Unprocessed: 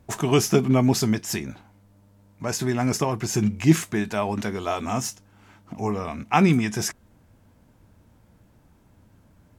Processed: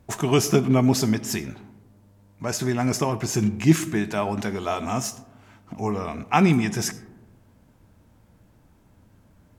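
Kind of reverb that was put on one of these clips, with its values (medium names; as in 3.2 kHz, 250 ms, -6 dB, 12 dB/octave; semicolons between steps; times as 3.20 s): algorithmic reverb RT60 1.2 s, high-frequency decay 0.3×, pre-delay 35 ms, DRR 15.5 dB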